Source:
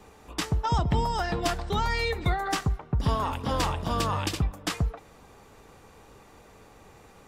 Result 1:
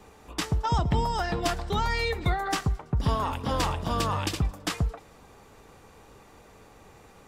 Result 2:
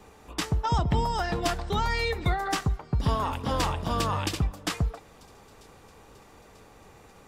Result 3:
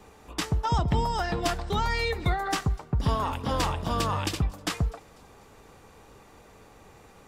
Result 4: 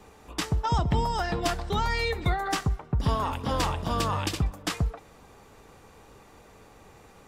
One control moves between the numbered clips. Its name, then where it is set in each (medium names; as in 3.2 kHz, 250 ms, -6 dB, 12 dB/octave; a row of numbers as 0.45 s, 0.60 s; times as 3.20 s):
feedback echo behind a high-pass, time: 110 ms, 941 ms, 247 ms, 63 ms